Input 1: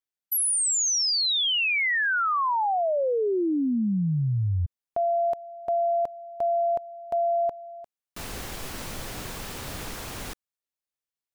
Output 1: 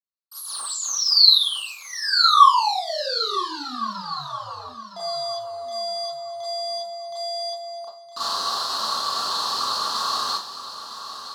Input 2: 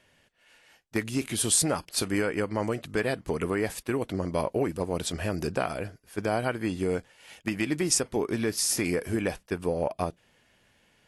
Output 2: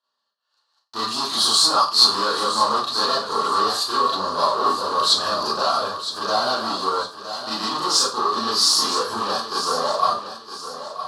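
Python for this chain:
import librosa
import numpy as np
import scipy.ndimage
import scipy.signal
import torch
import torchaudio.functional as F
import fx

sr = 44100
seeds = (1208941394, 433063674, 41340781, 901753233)

p1 = fx.leveller(x, sr, passes=5)
p2 = fx.double_bandpass(p1, sr, hz=2200.0, octaves=1.9)
p3 = p2 + fx.echo_feedback(p2, sr, ms=963, feedback_pct=33, wet_db=-11.0, dry=0)
p4 = fx.rev_schroeder(p3, sr, rt60_s=0.32, comb_ms=28, drr_db=-7.5)
y = F.gain(torch.from_numpy(p4), 3.5).numpy()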